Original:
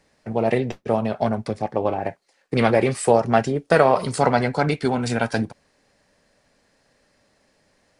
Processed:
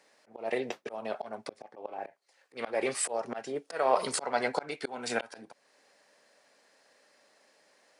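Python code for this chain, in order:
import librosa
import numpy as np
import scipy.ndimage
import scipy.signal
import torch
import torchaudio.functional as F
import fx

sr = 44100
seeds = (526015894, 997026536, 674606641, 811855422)

y = fx.auto_swell(x, sr, attack_ms=417.0)
y = scipy.signal.sosfilt(scipy.signal.butter(2, 430.0, 'highpass', fs=sr, output='sos'), y)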